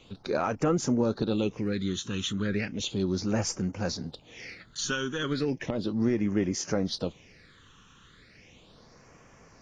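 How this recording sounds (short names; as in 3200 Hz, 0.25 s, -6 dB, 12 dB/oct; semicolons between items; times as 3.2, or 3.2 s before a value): phasing stages 8, 0.35 Hz, lowest notch 630–3800 Hz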